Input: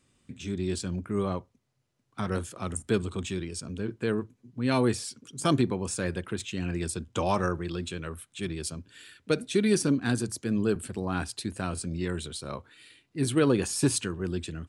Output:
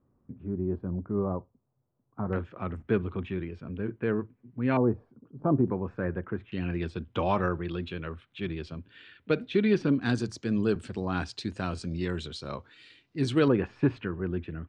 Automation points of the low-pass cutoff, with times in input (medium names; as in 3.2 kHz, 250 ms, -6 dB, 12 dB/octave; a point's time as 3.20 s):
low-pass 24 dB/octave
1.1 kHz
from 2.33 s 2.4 kHz
from 4.77 s 1 kHz
from 5.68 s 1.7 kHz
from 6.52 s 3.4 kHz
from 10.01 s 5.8 kHz
from 13.48 s 2.3 kHz